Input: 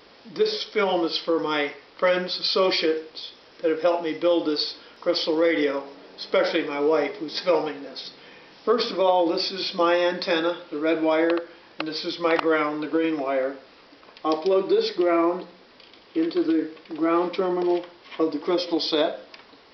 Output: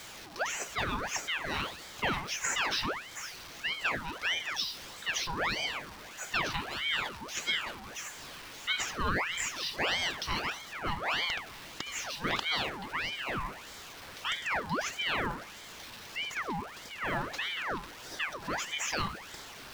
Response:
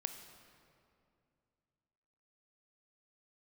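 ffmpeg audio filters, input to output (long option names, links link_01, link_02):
-af "aeval=exprs='val(0)+0.5*0.0237*sgn(val(0))':channel_layout=same,lowshelf=frequency=340:gain=-12,aeval=exprs='val(0)*sin(2*PI*1600*n/s+1600*0.7/1.6*sin(2*PI*1.6*n/s))':channel_layout=same,volume=-5.5dB"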